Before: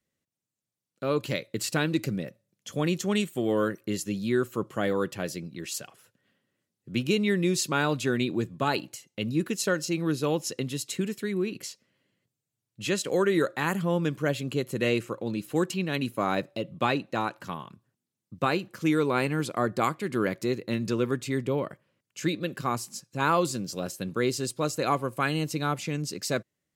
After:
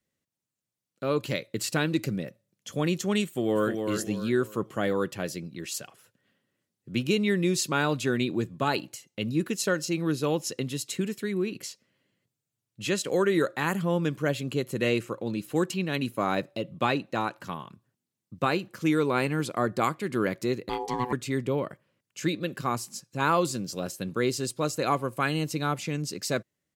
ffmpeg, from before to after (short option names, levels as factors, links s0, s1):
-filter_complex "[0:a]asplit=2[s0][s1];[s1]afade=t=in:st=3.25:d=0.01,afade=t=out:st=3.79:d=0.01,aecho=0:1:300|600|900|1200:0.530884|0.18581|0.0650333|0.0227617[s2];[s0][s2]amix=inputs=2:normalize=0,asettb=1/sr,asplit=3[s3][s4][s5];[s3]atrim=end=20.694[s6];[s4]atrim=start=20.69:end=21.13,asetpts=PTS-STARTPTS,afade=t=in:d=0.004:c=qsin,afade=t=out:st=0.436:d=0.004:c=qsin,aeval=exprs='val(0)*sin(2*PI*620*n/s)':c=same[s7];[s5]atrim=start=21.126[s8];[s6][s7]acrossfade=d=0.004:c1=hsin:c2=qsin[s9];[s9][s8]acrossfade=d=0.004:c1=qsin:c2=hsin"